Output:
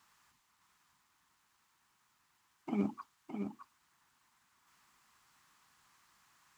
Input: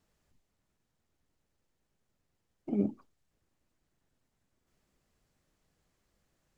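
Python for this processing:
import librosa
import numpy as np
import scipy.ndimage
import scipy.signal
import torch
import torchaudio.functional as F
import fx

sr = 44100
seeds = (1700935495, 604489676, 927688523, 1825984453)

y = fx.highpass(x, sr, hz=170.0, slope=6)
y = fx.low_shelf_res(y, sr, hz=750.0, db=-10.5, q=3.0)
y = y + 10.0 ** (-6.5 / 20.0) * np.pad(y, (int(613 * sr / 1000.0), 0))[:len(y)]
y = y * 10.0 ** (10.0 / 20.0)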